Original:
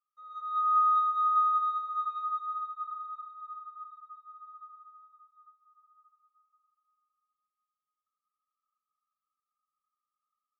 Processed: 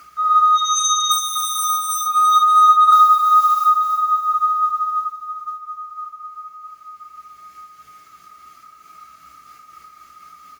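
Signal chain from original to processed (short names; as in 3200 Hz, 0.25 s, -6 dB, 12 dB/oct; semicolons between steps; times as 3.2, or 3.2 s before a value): sine folder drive 13 dB, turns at -18 dBFS; 1.11–2.01 careless resampling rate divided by 6×, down filtered, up zero stuff; bell 2200 Hz +12.5 dB 0.27 oct; short-mantissa float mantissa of 4-bit; upward compressor, threshold -42 dBFS; 2.92–3.64 tilt +5 dB/oct; compressor 8:1, threshold -25 dBFS, peak gain reduction 17 dB; feedback echo 0.33 s, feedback 48%, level -7.5 dB; reverb, pre-delay 3 ms, DRR -2 dB; noise-modulated level, depth 50%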